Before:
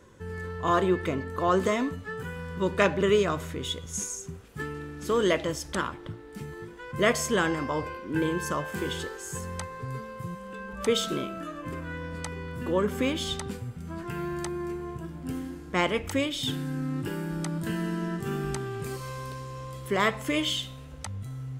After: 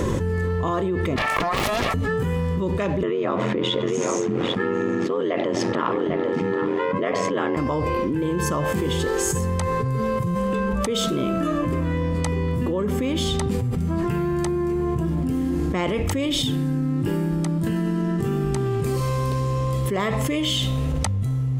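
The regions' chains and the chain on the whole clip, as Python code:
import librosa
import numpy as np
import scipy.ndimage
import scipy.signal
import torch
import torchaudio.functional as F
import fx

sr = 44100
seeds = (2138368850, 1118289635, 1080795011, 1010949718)

y = fx.chain(x, sr, fx.steep_highpass(hz=560.0, slope=96),
    fx.over_compress(threshold_db=-38.0, ratio=-1.0),
    fx.doppler_dist(depth_ms=0.89), at=(1.16, 1.94))
y = fx.chain(y, sr, fx.ring_mod(carrier_hz=44.0),
    fx.bandpass_edges(low_hz=270.0, high_hz=2700.0),
    fx.echo_single(ms=797, db=-20.5), at=(3.03, 7.57))
y = fx.tilt_shelf(y, sr, db=4.0, hz=670.0)
y = fx.notch(y, sr, hz=1500.0, q=7.5)
y = fx.env_flatten(y, sr, amount_pct=100)
y = y * 10.0 ** (-5.0 / 20.0)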